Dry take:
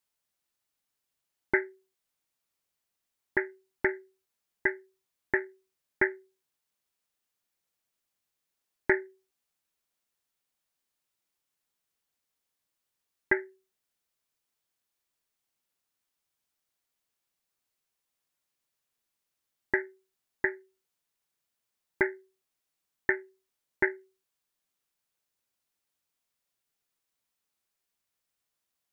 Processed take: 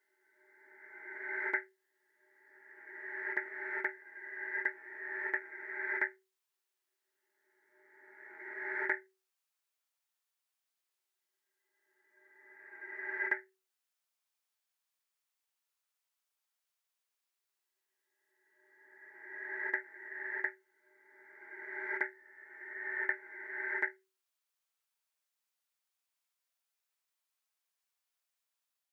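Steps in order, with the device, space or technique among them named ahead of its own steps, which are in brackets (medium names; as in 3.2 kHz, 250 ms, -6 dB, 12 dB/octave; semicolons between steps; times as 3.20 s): ghost voice (reverse; reverberation RT60 2.1 s, pre-delay 38 ms, DRR -1 dB; reverse; high-pass 670 Hz 12 dB/octave); trim -6 dB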